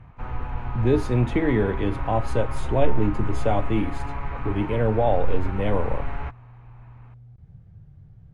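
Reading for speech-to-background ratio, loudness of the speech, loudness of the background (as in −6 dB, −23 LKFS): 8.0 dB, −25.0 LKFS, −33.0 LKFS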